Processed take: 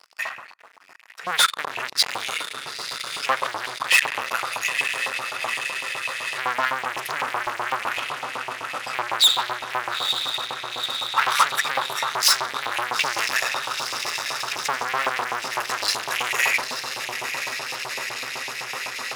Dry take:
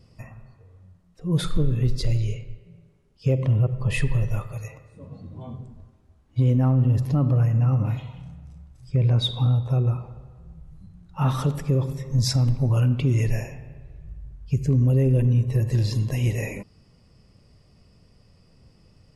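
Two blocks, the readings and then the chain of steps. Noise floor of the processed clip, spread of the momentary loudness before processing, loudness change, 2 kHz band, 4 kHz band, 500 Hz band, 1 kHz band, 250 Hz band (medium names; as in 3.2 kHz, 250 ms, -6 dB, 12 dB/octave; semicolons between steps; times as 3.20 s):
-43 dBFS, 20 LU, -1.0 dB, +18.5 dB, +14.0 dB, -2.0 dB, +16.0 dB, -17.5 dB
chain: echo that smears into a reverb 916 ms, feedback 77%, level -10.5 dB; waveshaping leveller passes 5; LFO high-pass saw up 7.9 Hz 900–2500 Hz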